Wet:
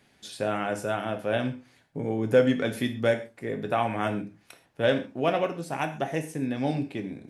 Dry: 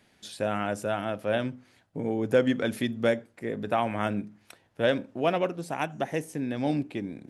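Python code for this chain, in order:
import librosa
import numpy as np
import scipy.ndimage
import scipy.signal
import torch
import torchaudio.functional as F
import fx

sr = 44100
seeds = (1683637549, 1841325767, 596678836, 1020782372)

y = fx.rev_gated(x, sr, seeds[0], gate_ms=160, shape='falling', drr_db=5.5)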